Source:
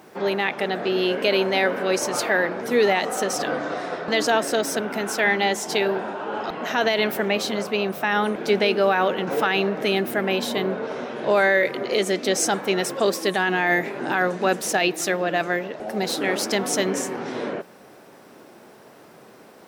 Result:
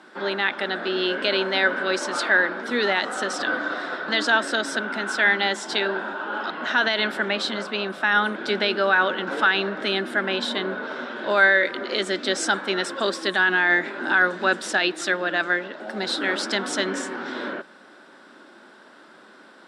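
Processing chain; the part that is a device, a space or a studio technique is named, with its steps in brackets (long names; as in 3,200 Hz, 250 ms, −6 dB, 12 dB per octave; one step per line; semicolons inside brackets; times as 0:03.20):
television speaker (loudspeaker in its box 220–8,000 Hz, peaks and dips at 450 Hz −9 dB, 720 Hz −6 dB, 1,500 Hz +9 dB, 2,400 Hz −4 dB, 3,600 Hz +6 dB, 6,300 Hz −9 dB)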